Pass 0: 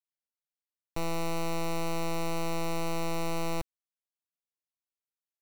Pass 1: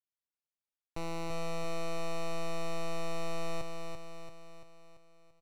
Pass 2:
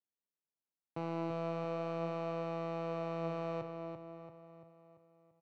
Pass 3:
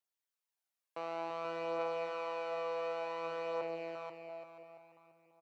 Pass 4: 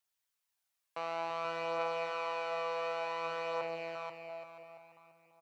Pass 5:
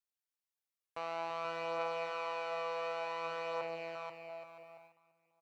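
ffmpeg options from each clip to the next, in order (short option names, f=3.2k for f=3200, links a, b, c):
-af "adynamicsmooth=sensitivity=2:basefreq=5.7k,highshelf=f=6.2k:g=4.5,aecho=1:1:339|678|1017|1356|1695|2034|2373:0.562|0.298|0.158|0.0837|0.0444|0.0235|0.0125,volume=-5.5dB"
-af "highpass=f=120:w=0.5412,highpass=f=120:w=1.3066,adynamicsmooth=sensitivity=1.5:basefreq=1k,flanger=delay=9.5:depth=5.7:regen=82:speed=0.38:shape=sinusoidal,volume=6.5dB"
-af "highpass=580,aecho=1:1:484|968|1452:0.631|0.133|0.0278,aphaser=in_gain=1:out_gain=1:delay=1.9:decay=0.32:speed=0.55:type=triangular,volume=2.5dB"
-af "equalizer=f=330:t=o:w=1.7:g=-10,volume=6dB"
-af "agate=range=-9dB:threshold=-57dB:ratio=16:detection=peak,volume=-2dB"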